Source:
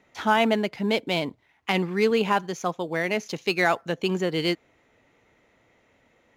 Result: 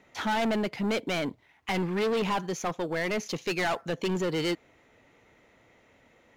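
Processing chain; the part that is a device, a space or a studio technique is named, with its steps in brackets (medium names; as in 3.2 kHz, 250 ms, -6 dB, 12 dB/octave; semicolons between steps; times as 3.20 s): saturation between pre-emphasis and de-emphasis (treble shelf 9.1 kHz +11 dB; saturation -26 dBFS, distortion -6 dB; treble shelf 9.1 kHz -11 dB); trim +2 dB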